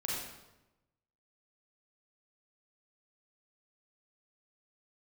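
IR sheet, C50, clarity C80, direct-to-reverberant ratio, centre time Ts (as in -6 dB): -1.5 dB, 2.0 dB, -5.0 dB, 77 ms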